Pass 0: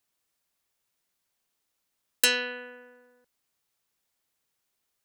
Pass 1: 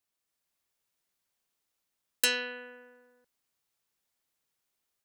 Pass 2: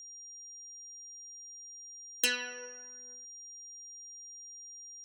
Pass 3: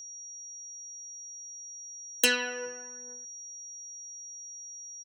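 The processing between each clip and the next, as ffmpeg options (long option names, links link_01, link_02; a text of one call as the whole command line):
ffmpeg -i in.wav -af "dynaudnorm=framelen=250:gausssize=3:maxgain=3.5dB,volume=-6.5dB" out.wav
ffmpeg -i in.wav -af "aphaser=in_gain=1:out_gain=1:delay=4.7:decay=0.54:speed=0.46:type=triangular,aeval=exprs='val(0)+0.00794*sin(2*PI*5700*n/s)':channel_layout=same,volume=-4dB" out.wav
ffmpeg -i in.wav -filter_complex "[0:a]acrossover=split=150|1200[link_01][link_02][link_03];[link_01]asplit=5[link_04][link_05][link_06][link_07][link_08];[link_05]adelay=416,afreqshift=100,volume=-6dB[link_09];[link_06]adelay=832,afreqshift=200,volume=-14.9dB[link_10];[link_07]adelay=1248,afreqshift=300,volume=-23.7dB[link_11];[link_08]adelay=1664,afreqshift=400,volume=-32.6dB[link_12];[link_04][link_09][link_10][link_11][link_12]amix=inputs=5:normalize=0[link_13];[link_02]acontrast=38[link_14];[link_13][link_14][link_03]amix=inputs=3:normalize=0,volume=4.5dB" out.wav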